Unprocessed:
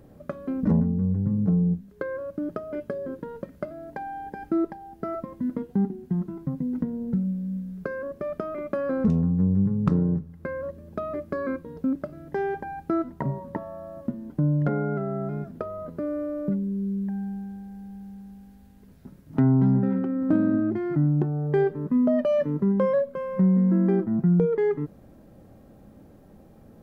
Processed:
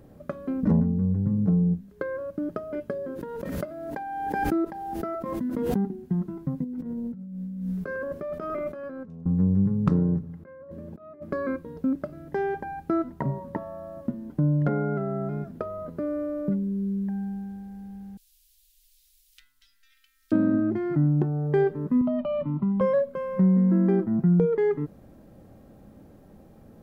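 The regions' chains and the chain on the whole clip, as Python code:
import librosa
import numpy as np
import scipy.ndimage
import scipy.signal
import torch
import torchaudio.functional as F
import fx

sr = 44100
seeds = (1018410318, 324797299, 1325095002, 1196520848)

y = fx.chain(x, sr, fx.low_shelf(hz=170.0, db=-7.0),
    fx.pre_swell(db_per_s=25.0), at=(3.04, 5.87))
y = fx.chain(y, sr, fx.echo_single(ms=101, db=-17.0),
    fx.over_compress(threshold_db=-35.0, ratio=-1.0),
    fx.doubler(ms=12.0, db=-11), at=(6.64, 9.26))
y = fx.chain(y, sr, fx.highpass(hz=97.0, slope=24),
    fx.high_shelf(hz=2300.0, db=-10.5),
    fx.over_compress(threshold_db=-39.0, ratio=-0.5), at=(10.23, 11.32))
y = fx.chain(y, sr, fx.cheby2_bandstop(low_hz=110.0, high_hz=780.0, order=4, stop_db=70),
    fx.high_shelf(hz=2100.0, db=9.5), at=(18.17, 20.32))
y = fx.chain(y, sr, fx.lowpass(hz=2400.0, slope=6),
    fx.fixed_phaser(hz=1700.0, stages=6),
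    fx.band_squash(depth_pct=70), at=(22.01, 22.81))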